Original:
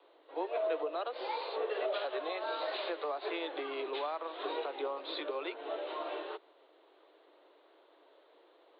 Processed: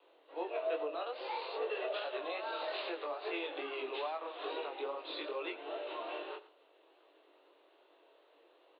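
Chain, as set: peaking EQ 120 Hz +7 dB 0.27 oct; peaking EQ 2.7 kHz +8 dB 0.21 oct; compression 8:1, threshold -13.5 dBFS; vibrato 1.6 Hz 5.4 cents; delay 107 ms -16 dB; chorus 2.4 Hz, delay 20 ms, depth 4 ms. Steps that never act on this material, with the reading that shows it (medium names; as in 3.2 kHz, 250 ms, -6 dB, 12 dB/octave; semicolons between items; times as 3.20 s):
peaking EQ 120 Hz: input has nothing below 250 Hz; compression, threshold -13.5 dBFS: peak at its input -21.5 dBFS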